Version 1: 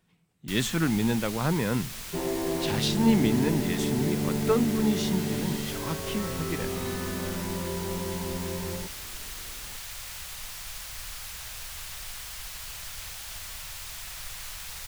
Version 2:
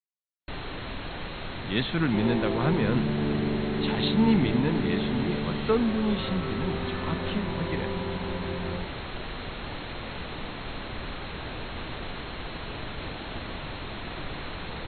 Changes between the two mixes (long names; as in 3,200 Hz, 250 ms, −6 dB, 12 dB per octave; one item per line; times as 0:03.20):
speech: entry +1.20 s
first sound: remove guitar amp tone stack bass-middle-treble 10-0-10
master: add linear-phase brick-wall low-pass 4,300 Hz